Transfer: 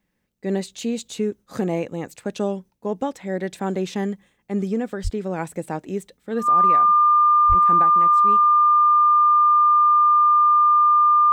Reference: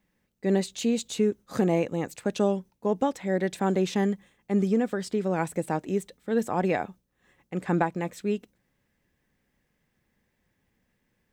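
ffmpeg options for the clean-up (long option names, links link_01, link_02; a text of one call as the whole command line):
ffmpeg -i in.wav -filter_complex "[0:a]bandreject=frequency=1200:width=30,asplit=3[link_01][link_02][link_03];[link_01]afade=type=out:start_time=5.03:duration=0.02[link_04];[link_02]highpass=frequency=140:width=0.5412,highpass=frequency=140:width=1.3066,afade=type=in:start_time=5.03:duration=0.02,afade=type=out:start_time=5.15:duration=0.02[link_05];[link_03]afade=type=in:start_time=5.15:duration=0.02[link_06];[link_04][link_05][link_06]amix=inputs=3:normalize=0,asplit=3[link_07][link_08][link_09];[link_07]afade=type=out:start_time=7.48:duration=0.02[link_10];[link_08]highpass=frequency=140:width=0.5412,highpass=frequency=140:width=1.3066,afade=type=in:start_time=7.48:duration=0.02,afade=type=out:start_time=7.6:duration=0.02[link_11];[link_09]afade=type=in:start_time=7.6:duration=0.02[link_12];[link_10][link_11][link_12]amix=inputs=3:normalize=0,asetnsamples=nb_out_samples=441:pad=0,asendcmd='6.49 volume volume 5.5dB',volume=0dB" out.wav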